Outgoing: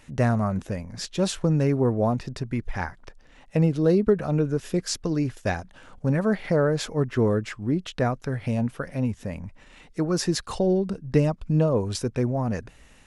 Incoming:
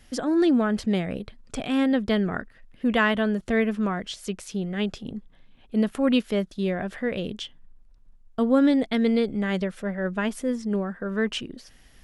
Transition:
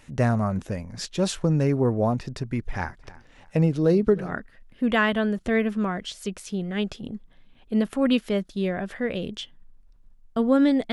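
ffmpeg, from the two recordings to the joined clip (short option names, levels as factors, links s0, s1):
-filter_complex "[0:a]asplit=3[s0][s1][s2];[s0]afade=t=out:st=2.7:d=0.02[s3];[s1]aecho=1:1:315|630:0.0944|0.0293,afade=t=in:st=2.7:d=0.02,afade=t=out:st=4.35:d=0.02[s4];[s2]afade=t=in:st=4.35:d=0.02[s5];[s3][s4][s5]amix=inputs=3:normalize=0,apad=whole_dur=10.92,atrim=end=10.92,atrim=end=4.35,asetpts=PTS-STARTPTS[s6];[1:a]atrim=start=2.17:end=8.94,asetpts=PTS-STARTPTS[s7];[s6][s7]acrossfade=d=0.2:c1=tri:c2=tri"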